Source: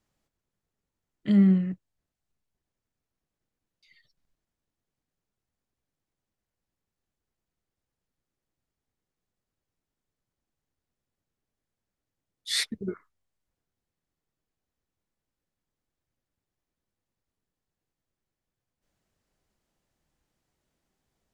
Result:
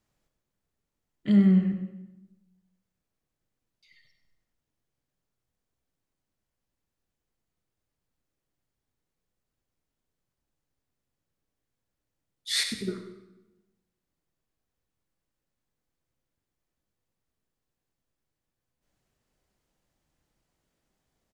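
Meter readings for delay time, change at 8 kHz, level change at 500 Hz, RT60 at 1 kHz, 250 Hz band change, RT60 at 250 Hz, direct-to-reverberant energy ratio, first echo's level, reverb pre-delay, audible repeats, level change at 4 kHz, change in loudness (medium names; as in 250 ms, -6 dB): 97 ms, +1.0 dB, +1.0 dB, 1.0 s, +0.5 dB, 1.2 s, 5.0 dB, -12.0 dB, 22 ms, 1, +1.0 dB, -0.5 dB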